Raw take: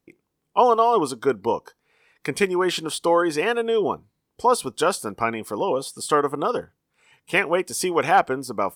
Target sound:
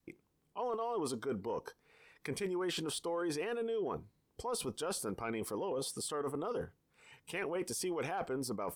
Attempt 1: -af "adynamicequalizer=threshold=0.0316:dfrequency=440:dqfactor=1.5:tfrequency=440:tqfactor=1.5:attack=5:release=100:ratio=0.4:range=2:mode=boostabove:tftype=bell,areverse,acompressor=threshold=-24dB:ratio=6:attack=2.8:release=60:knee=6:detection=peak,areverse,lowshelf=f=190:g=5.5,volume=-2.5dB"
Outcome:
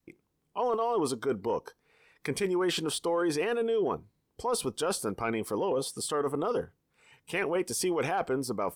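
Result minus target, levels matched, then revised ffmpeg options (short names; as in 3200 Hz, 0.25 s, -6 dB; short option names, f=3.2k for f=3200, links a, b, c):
compressor: peak gain reduction -8.5 dB
-af "adynamicequalizer=threshold=0.0316:dfrequency=440:dqfactor=1.5:tfrequency=440:tqfactor=1.5:attack=5:release=100:ratio=0.4:range=2:mode=boostabove:tftype=bell,areverse,acompressor=threshold=-34dB:ratio=6:attack=2.8:release=60:knee=6:detection=peak,areverse,lowshelf=f=190:g=5.5,volume=-2.5dB"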